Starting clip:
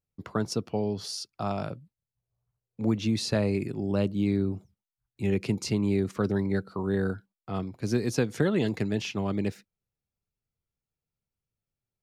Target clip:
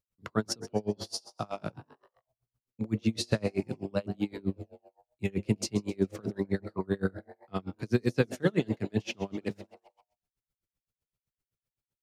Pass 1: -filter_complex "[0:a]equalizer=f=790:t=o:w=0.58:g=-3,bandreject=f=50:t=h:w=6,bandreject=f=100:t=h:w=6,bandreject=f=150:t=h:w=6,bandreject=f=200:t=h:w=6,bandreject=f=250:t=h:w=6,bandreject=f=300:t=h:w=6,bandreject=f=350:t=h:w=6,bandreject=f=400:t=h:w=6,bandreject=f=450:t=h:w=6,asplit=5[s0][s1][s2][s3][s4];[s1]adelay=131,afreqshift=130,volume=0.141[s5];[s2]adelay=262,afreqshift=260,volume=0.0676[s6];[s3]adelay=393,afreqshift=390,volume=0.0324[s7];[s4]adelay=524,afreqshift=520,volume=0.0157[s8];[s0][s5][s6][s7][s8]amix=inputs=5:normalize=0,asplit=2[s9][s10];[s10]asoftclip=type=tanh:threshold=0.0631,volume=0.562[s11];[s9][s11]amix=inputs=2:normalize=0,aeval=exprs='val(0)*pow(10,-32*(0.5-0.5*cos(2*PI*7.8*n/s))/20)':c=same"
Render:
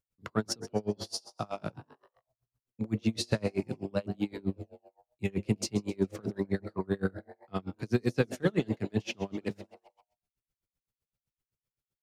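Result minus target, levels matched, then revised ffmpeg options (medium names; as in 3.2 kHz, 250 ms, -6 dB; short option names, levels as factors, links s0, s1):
saturation: distortion +15 dB
-filter_complex "[0:a]equalizer=f=790:t=o:w=0.58:g=-3,bandreject=f=50:t=h:w=6,bandreject=f=100:t=h:w=6,bandreject=f=150:t=h:w=6,bandreject=f=200:t=h:w=6,bandreject=f=250:t=h:w=6,bandreject=f=300:t=h:w=6,bandreject=f=350:t=h:w=6,bandreject=f=400:t=h:w=6,bandreject=f=450:t=h:w=6,asplit=5[s0][s1][s2][s3][s4];[s1]adelay=131,afreqshift=130,volume=0.141[s5];[s2]adelay=262,afreqshift=260,volume=0.0676[s6];[s3]adelay=393,afreqshift=390,volume=0.0324[s7];[s4]adelay=524,afreqshift=520,volume=0.0157[s8];[s0][s5][s6][s7][s8]amix=inputs=5:normalize=0,asplit=2[s9][s10];[s10]asoftclip=type=tanh:threshold=0.224,volume=0.562[s11];[s9][s11]amix=inputs=2:normalize=0,aeval=exprs='val(0)*pow(10,-32*(0.5-0.5*cos(2*PI*7.8*n/s))/20)':c=same"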